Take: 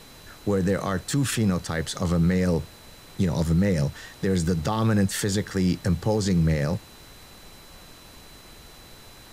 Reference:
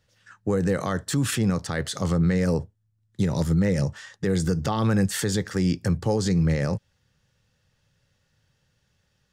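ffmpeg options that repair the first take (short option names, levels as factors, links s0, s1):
-af "bandreject=f=4000:w=30,afftdn=nr=22:nf=-47"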